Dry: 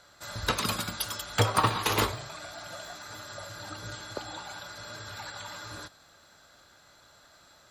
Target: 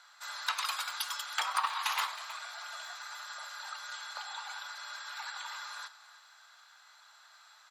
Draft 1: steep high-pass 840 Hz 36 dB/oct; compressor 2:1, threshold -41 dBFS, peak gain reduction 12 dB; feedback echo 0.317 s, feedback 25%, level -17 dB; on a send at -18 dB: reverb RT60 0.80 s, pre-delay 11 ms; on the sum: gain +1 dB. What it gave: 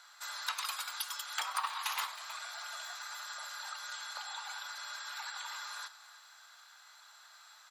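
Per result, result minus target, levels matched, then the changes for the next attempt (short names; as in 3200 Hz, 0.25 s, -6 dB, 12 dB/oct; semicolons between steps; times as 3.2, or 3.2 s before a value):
compressor: peak gain reduction +4.5 dB; 8000 Hz band +3.0 dB
change: compressor 2:1, threshold -32.5 dBFS, peak gain reduction 7.5 dB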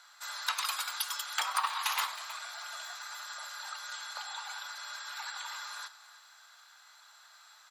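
8000 Hz band +2.5 dB
add after steep high-pass: high shelf 7500 Hz -8 dB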